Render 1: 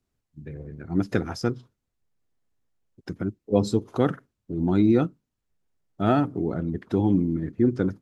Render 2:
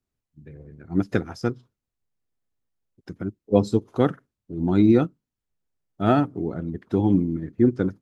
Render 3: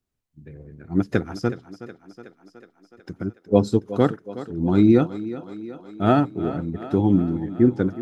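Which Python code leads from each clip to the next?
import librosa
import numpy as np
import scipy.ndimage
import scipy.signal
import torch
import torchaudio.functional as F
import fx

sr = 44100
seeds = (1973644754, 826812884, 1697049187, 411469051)

y1 = fx.upward_expand(x, sr, threshold_db=-34.0, expansion=1.5)
y1 = y1 * librosa.db_to_amplitude(3.5)
y2 = fx.echo_thinned(y1, sr, ms=369, feedback_pct=67, hz=170.0, wet_db=-14.0)
y2 = y2 * librosa.db_to_amplitude(1.5)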